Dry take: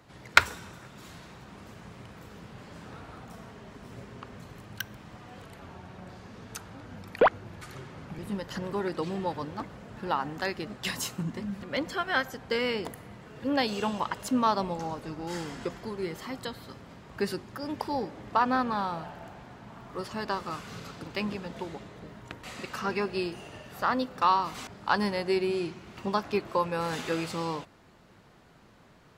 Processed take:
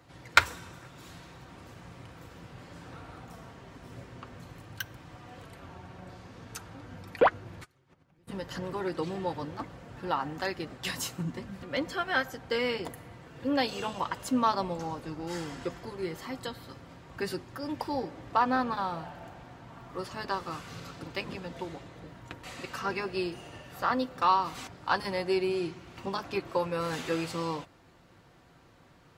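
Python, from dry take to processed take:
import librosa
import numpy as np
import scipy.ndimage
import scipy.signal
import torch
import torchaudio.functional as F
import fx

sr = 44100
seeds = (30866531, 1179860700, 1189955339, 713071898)

y = fx.gate_flip(x, sr, shuts_db=-35.0, range_db=-25, at=(7.63, 8.27), fade=0.02)
y = fx.notch_comb(y, sr, f0_hz=210.0)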